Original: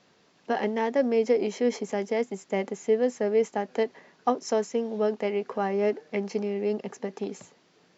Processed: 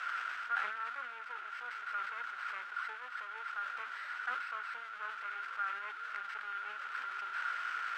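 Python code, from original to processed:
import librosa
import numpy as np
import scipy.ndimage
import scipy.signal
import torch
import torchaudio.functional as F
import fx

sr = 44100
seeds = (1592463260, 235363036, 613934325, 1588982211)

y = fx.delta_mod(x, sr, bps=16000, step_db=-25.0)
y = np.maximum(y, 0.0)
y = fx.rider(y, sr, range_db=10, speed_s=0.5)
y = fx.bandpass_q(y, sr, hz=1400.0, q=16.0)
y = fx.tilt_eq(y, sr, slope=5.5)
y = fx.sustainer(y, sr, db_per_s=50.0)
y = y * librosa.db_to_amplitude(6.0)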